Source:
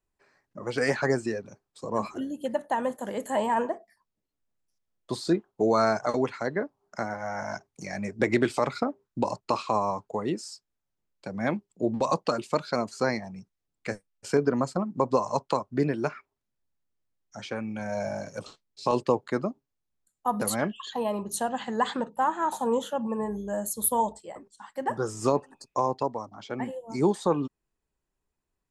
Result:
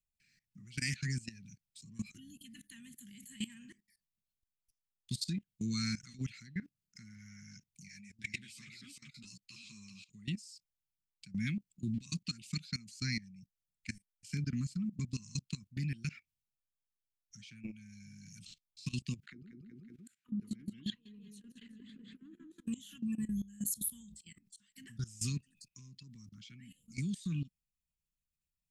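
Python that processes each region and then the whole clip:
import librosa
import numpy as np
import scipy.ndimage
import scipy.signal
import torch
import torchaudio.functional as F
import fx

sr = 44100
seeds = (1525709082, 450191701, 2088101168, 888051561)

y = fx.chain(x, sr, fx.low_shelf(hz=460.0, db=-10.0),
    fx.echo_single(ms=391, db=-8.5),
    fx.ensemble(), at=(7.88, 10.1))
y = fx.chain(y, sr, fx.auto_wah(base_hz=300.0, top_hz=1500.0, q=7.8, full_db=-22.0, direction='down'),
    fx.echo_feedback(ms=186, feedback_pct=24, wet_db=-6.5),
    fx.env_flatten(amount_pct=100), at=(19.23, 22.67))
y = scipy.signal.sosfilt(scipy.signal.cheby1(3, 1.0, [190.0, 2400.0], 'bandstop', fs=sr, output='sos'), y)
y = fx.high_shelf(y, sr, hz=10000.0, db=5.5)
y = fx.level_steps(y, sr, step_db=19)
y = y * 10.0 ** (3.5 / 20.0)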